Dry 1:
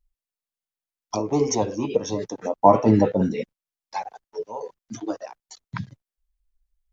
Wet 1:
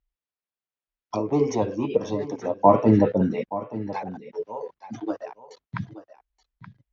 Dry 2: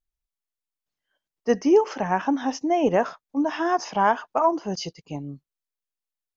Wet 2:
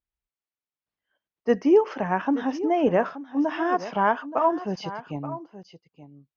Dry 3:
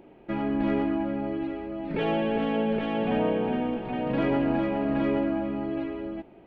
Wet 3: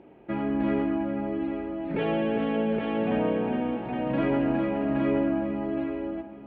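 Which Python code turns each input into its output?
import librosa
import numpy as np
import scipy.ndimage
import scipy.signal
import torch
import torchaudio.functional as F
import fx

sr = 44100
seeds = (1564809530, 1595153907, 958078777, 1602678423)

p1 = scipy.signal.sosfilt(scipy.signal.butter(2, 3100.0, 'lowpass', fs=sr, output='sos'), x)
p2 = p1 + fx.echo_single(p1, sr, ms=876, db=-14.5, dry=0)
p3 = fx.dynamic_eq(p2, sr, hz=810.0, q=4.2, threshold_db=-37.0, ratio=4.0, max_db=-4)
y = scipy.signal.sosfilt(scipy.signal.butter(2, 45.0, 'highpass', fs=sr, output='sos'), p3)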